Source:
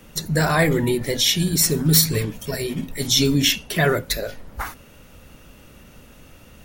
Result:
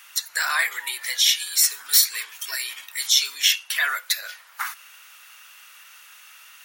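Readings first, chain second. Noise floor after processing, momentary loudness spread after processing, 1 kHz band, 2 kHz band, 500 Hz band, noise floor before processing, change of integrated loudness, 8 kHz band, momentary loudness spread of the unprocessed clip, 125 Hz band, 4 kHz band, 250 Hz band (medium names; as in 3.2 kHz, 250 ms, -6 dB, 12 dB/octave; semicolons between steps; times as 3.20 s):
-49 dBFS, 14 LU, -4.0 dB, +1.5 dB, -26.0 dB, -48 dBFS, -1.5 dB, +1.0 dB, 14 LU, under -40 dB, +1.0 dB, under -40 dB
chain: high-pass 1.2 kHz 24 dB/octave; in parallel at +2 dB: compression, threshold -33 dBFS, peak gain reduction 19.5 dB; on the sum: trim -1 dB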